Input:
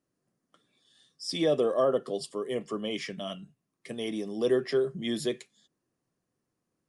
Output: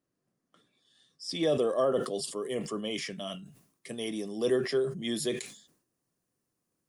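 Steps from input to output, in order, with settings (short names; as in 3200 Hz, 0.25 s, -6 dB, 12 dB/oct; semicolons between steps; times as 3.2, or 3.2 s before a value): high shelf 6600 Hz -2.5 dB, from 1.43 s +11 dB; sustainer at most 96 dB/s; gain -2 dB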